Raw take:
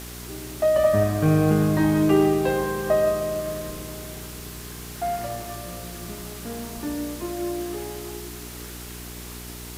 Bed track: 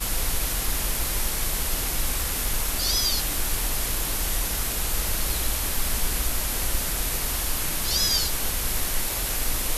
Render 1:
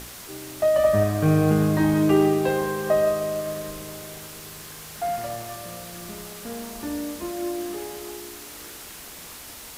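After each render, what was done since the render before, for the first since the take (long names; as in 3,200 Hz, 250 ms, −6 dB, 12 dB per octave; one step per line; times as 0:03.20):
hum removal 60 Hz, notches 7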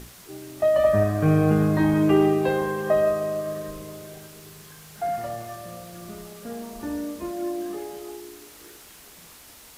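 noise reduction from a noise print 7 dB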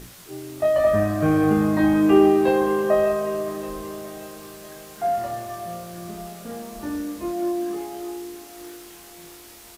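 double-tracking delay 23 ms −3 dB
feedback echo with a high-pass in the loop 579 ms, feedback 64%, high-pass 190 Hz, level −16 dB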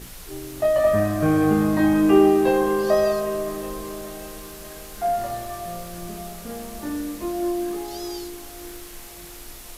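mix in bed track −16.5 dB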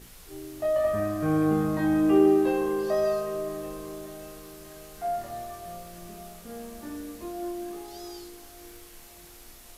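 tuned comb filter 78 Hz, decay 1.1 s, harmonics all, mix 70%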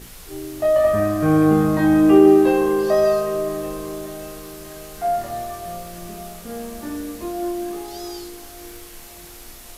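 level +8.5 dB
brickwall limiter −3 dBFS, peak gain reduction 1 dB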